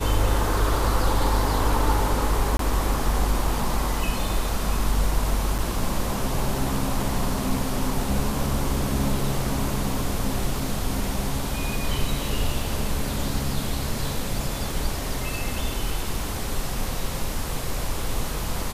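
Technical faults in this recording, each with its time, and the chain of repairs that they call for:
2.57–2.59 s: dropout 23 ms
5.58–5.59 s: dropout 7.1 ms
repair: interpolate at 2.57 s, 23 ms; interpolate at 5.58 s, 7.1 ms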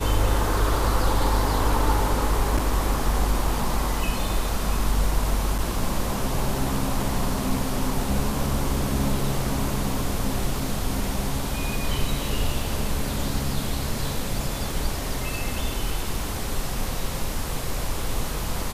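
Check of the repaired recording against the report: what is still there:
nothing left

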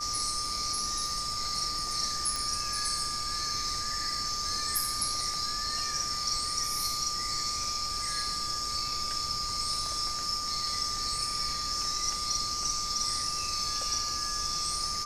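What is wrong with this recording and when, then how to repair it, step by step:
whine 1.2 kHz -36 dBFS
2.36 s: pop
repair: de-click; band-stop 1.2 kHz, Q 30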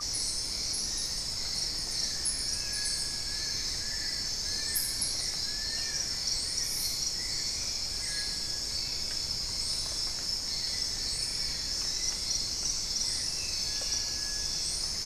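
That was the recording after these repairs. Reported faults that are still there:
nothing left

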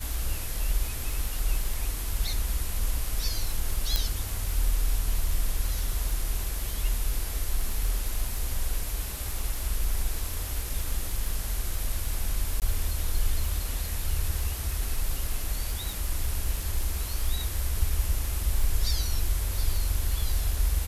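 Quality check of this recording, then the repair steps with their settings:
crackle 28 per s -30 dBFS
3.96 s: pop -8 dBFS
12.60–12.62 s: dropout 18 ms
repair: de-click; interpolate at 12.60 s, 18 ms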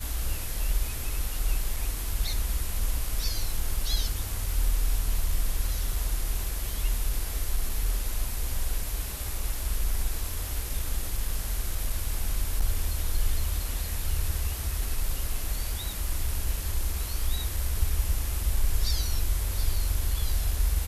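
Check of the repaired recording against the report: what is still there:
nothing left

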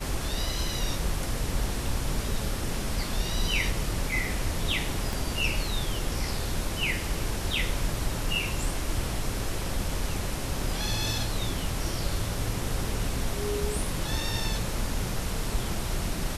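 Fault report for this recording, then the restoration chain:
5.13 s: pop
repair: de-click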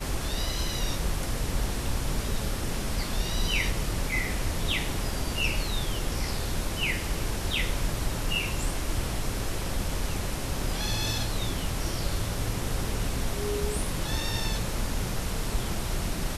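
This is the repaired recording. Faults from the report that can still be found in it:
5.13 s: pop

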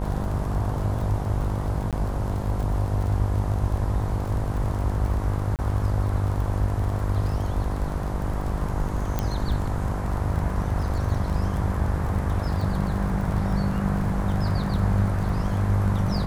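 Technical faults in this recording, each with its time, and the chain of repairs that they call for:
buzz 50 Hz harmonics 21 -29 dBFS
crackle 36 per s -31 dBFS
1.91–1.93 s: dropout 17 ms
5.56–5.59 s: dropout 28 ms
9.19 s: pop -11 dBFS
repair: de-click; de-hum 50 Hz, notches 21; interpolate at 1.91 s, 17 ms; interpolate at 5.56 s, 28 ms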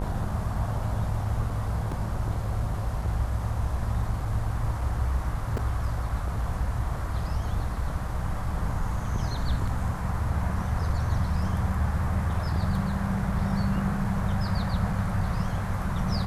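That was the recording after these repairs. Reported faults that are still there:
nothing left

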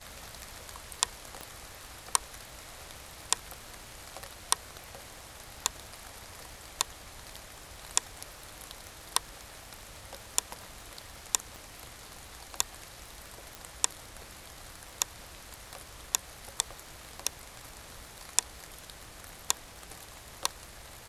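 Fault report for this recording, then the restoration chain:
crackle 44 per s -45 dBFS
1.41 s: pop -24 dBFS
11.56 s: pop
13.55 s: pop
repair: de-click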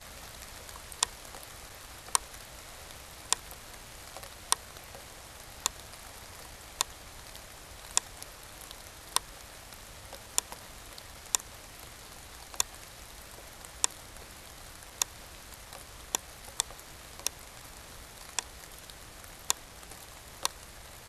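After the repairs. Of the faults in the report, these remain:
1.41 s: pop
11.56 s: pop

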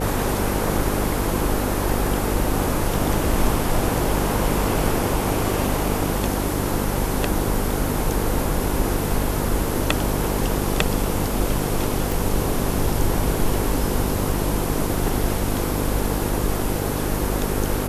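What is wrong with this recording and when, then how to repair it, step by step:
buzz 50 Hz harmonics 10 -26 dBFS
12.12 s: pop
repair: de-click; de-hum 50 Hz, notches 10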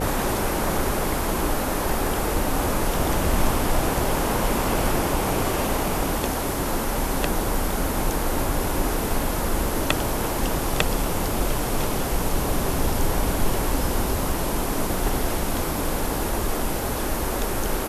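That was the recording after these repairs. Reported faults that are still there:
nothing left

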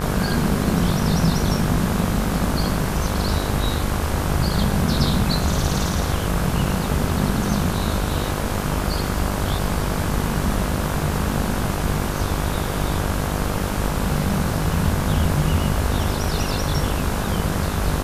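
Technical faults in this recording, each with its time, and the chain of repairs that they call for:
buzz 50 Hz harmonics 34 -26 dBFS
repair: de-hum 50 Hz, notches 34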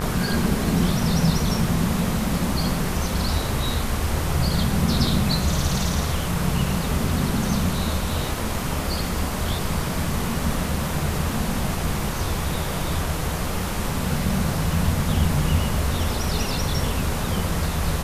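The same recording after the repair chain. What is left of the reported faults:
nothing left

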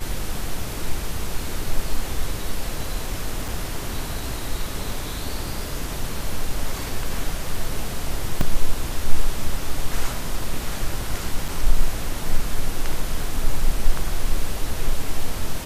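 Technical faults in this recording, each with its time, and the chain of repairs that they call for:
3.48 s: dropout 4.7 ms
8.41 s: dropout 2.3 ms
11.48 s: dropout 4.9 ms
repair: interpolate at 3.48 s, 4.7 ms; interpolate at 8.41 s, 2.3 ms; interpolate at 11.48 s, 4.9 ms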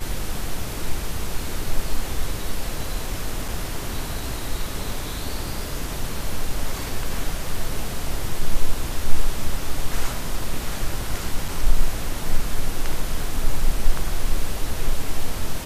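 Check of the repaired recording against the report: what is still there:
nothing left

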